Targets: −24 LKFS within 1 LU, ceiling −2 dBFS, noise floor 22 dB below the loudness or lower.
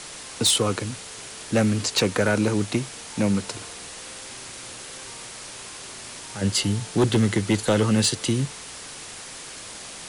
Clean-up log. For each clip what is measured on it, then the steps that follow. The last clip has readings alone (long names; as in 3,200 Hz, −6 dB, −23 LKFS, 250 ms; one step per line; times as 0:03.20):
share of clipped samples 0.5%; peaks flattened at −13.0 dBFS; background noise floor −39 dBFS; target noise floor −45 dBFS; integrated loudness −23.0 LKFS; sample peak −13.0 dBFS; target loudness −24.0 LKFS
→ clipped peaks rebuilt −13 dBFS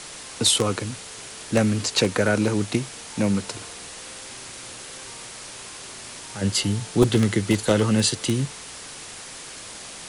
share of clipped samples 0.0%; background noise floor −39 dBFS; target noise floor −45 dBFS
→ broadband denoise 6 dB, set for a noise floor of −39 dBFS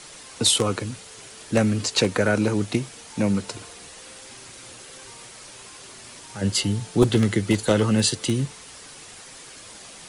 background noise floor −44 dBFS; target noise floor −45 dBFS
→ broadband denoise 6 dB, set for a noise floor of −44 dBFS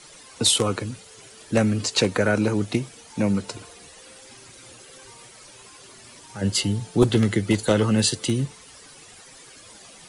background noise floor −47 dBFS; integrated loudness −22.5 LKFS; sample peak −4.0 dBFS; target loudness −24.0 LKFS
→ level −1.5 dB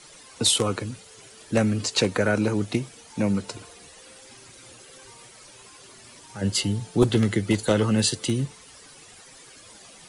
integrated loudness −24.0 LKFS; sample peak −5.5 dBFS; background noise floor −49 dBFS